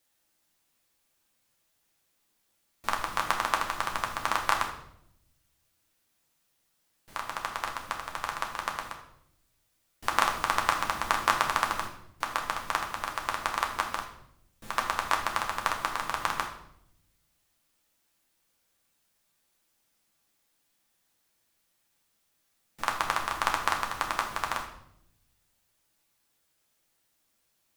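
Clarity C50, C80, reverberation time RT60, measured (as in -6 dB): 7.5 dB, 10.5 dB, 0.75 s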